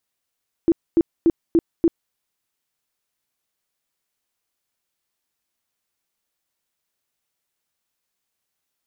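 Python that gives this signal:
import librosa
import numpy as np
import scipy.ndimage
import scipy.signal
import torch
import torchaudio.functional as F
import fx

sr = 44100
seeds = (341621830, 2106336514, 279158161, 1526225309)

y = fx.tone_burst(sr, hz=333.0, cycles=13, every_s=0.29, bursts=5, level_db=-11.0)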